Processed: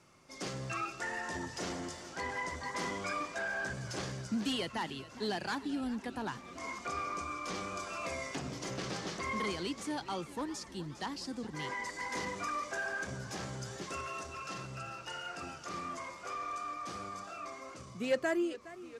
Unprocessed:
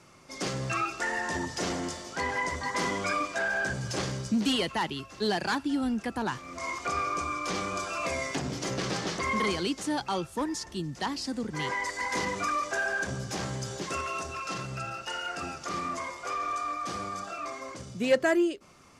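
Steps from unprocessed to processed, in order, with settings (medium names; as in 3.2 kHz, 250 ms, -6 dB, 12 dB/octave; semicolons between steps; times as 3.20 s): modulated delay 412 ms, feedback 69%, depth 122 cents, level -17 dB; trim -7.5 dB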